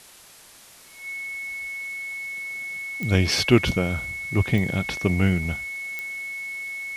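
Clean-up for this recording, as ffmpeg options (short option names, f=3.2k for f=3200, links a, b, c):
-af "adeclick=t=4,bandreject=f=2.2k:w=30,afwtdn=0.0045"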